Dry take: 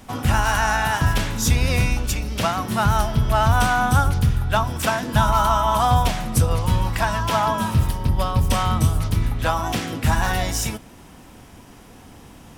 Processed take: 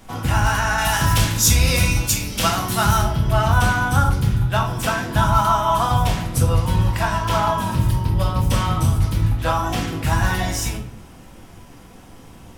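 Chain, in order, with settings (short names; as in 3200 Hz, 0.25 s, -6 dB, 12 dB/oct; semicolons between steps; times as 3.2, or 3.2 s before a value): 0.78–2.99 high shelf 3200 Hz +11 dB; shoebox room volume 80 m³, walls mixed, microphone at 0.71 m; gain -2.5 dB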